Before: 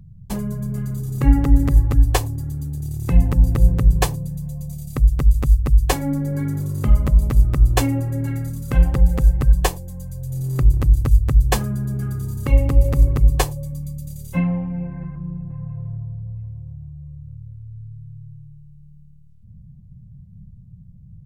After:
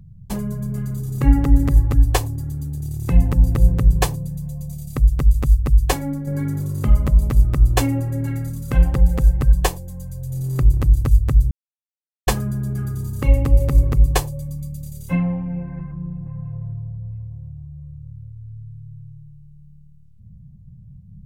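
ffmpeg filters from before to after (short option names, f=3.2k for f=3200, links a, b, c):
-filter_complex "[0:a]asplit=3[a][b][c];[a]atrim=end=6.27,asetpts=PTS-STARTPTS,afade=t=out:st=5.88:d=0.39:silence=0.473151[d];[b]atrim=start=6.27:end=11.51,asetpts=PTS-STARTPTS,afade=t=in:d=0.004:c=hsin:silence=0.473151,afade=t=out:st=5.236:d=0.004:c=hsin,apad=pad_dur=0.76[e];[c]atrim=start=11.51,asetpts=PTS-STARTPTS,afade=t=in:d=0.004:c=hsin[f];[d][e][f]concat=n=3:v=0:a=1"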